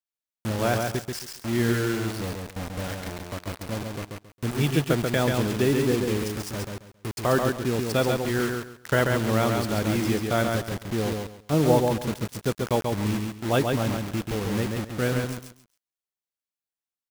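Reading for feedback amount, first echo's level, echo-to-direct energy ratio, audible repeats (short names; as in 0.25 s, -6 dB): 23%, -4.0 dB, -4.0 dB, 3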